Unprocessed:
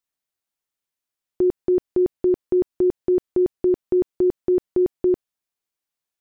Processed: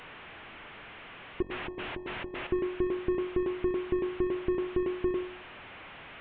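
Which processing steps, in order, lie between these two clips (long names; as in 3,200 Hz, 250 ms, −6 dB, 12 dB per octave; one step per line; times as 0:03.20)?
linear delta modulator 16 kbit/s, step −43.5 dBFS
0:01.42–0:02.47: compressor whose output falls as the input rises −35 dBFS, ratio −0.5
hum removal 45.4 Hz, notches 24
level +3.5 dB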